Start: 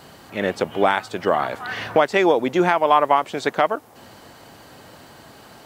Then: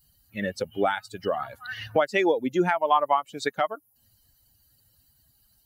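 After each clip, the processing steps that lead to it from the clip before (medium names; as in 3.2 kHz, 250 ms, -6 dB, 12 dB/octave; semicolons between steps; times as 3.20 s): expander on every frequency bin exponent 2; in parallel at +0.5 dB: compression, threshold -29 dBFS, peak gain reduction 15.5 dB; on the sum: trim -4.5 dB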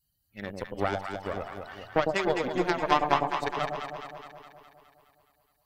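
Chebyshev shaper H 3 -13 dB, 4 -20 dB, 7 -36 dB, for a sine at -9 dBFS; echo whose repeats swap between lows and highs 104 ms, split 820 Hz, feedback 77%, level -3 dB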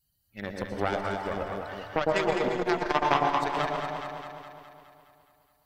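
on a send at -4.5 dB: reverberation RT60 0.85 s, pre-delay 108 ms; on the sum: transformer saturation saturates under 800 Hz; trim +1.5 dB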